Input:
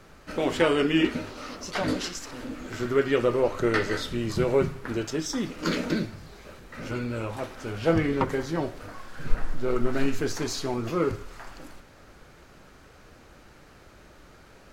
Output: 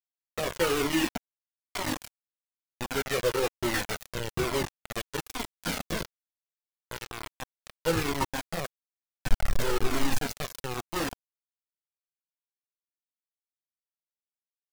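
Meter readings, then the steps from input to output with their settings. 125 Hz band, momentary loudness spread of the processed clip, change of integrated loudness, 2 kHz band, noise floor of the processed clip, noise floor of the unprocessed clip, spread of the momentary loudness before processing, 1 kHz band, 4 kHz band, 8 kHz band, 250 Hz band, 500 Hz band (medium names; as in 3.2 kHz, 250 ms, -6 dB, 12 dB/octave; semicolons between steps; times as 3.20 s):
-5.5 dB, 14 LU, -3.5 dB, -2.0 dB, under -85 dBFS, -52 dBFS, 16 LU, -1.5 dB, 0.0 dB, +2.0 dB, -7.0 dB, -6.0 dB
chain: bit crusher 4-bit; Shepard-style flanger falling 1.1 Hz; trim -1 dB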